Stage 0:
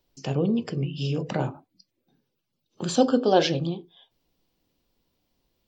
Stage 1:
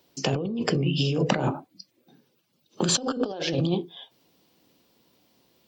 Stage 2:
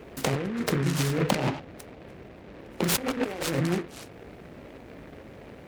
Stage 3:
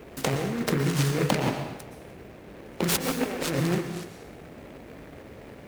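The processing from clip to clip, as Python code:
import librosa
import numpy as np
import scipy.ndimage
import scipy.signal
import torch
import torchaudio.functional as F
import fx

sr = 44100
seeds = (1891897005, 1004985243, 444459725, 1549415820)

y1 = scipy.signal.sosfilt(scipy.signal.butter(2, 150.0, 'highpass', fs=sr, output='sos'), x)
y1 = fx.over_compress(y1, sr, threshold_db=-32.0, ratio=-1.0)
y1 = y1 * librosa.db_to_amplitude(5.5)
y2 = fx.dmg_noise_band(y1, sr, seeds[0], low_hz=40.0, high_hz=620.0, level_db=-44.0)
y2 = fx.noise_mod_delay(y2, sr, seeds[1], noise_hz=1400.0, depth_ms=0.13)
y2 = y2 * librosa.db_to_amplitude(-1.5)
y3 = fx.quant_companded(y2, sr, bits=6)
y3 = fx.rev_plate(y3, sr, seeds[2], rt60_s=0.9, hf_ratio=0.95, predelay_ms=105, drr_db=7.0)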